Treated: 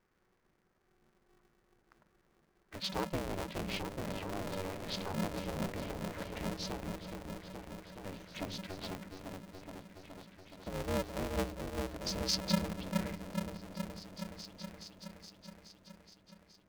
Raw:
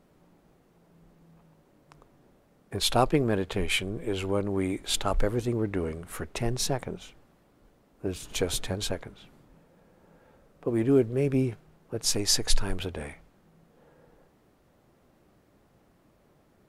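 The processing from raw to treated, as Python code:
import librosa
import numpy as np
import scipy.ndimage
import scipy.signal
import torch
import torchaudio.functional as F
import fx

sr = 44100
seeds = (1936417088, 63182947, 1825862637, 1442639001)

y = scipy.signal.sosfilt(scipy.signal.cheby1(6, 9, 6400.0, 'lowpass', fs=sr, output='sos'), x)
y = fx.env_phaser(y, sr, low_hz=560.0, high_hz=1700.0, full_db=-32.0)
y = fx.echo_opening(y, sr, ms=421, hz=400, octaves=1, feedback_pct=70, wet_db=-3)
y = y * np.sign(np.sin(2.0 * np.pi * 190.0 * np.arange(len(y)) / sr))
y = F.gain(torch.from_numpy(y), -4.0).numpy()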